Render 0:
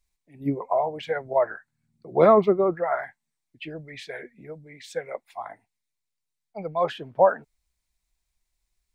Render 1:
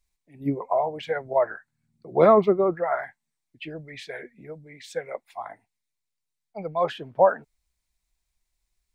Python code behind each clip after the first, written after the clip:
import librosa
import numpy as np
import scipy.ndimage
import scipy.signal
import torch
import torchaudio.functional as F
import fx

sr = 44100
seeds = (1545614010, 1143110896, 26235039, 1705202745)

y = x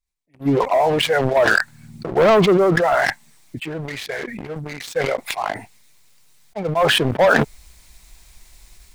y = fx.leveller(x, sr, passes=3)
y = fx.sustainer(y, sr, db_per_s=20.0)
y = y * librosa.db_to_amplitude(-3.5)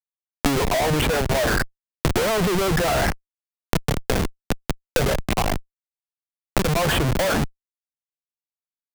y = fx.env_lowpass(x, sr, base_hz=1000.0, full_db=-16.0)
y = fx.schmitt(y, sr, flips_db=-21.5)
y = fx.band_squash(y, sr, depth_pct=100)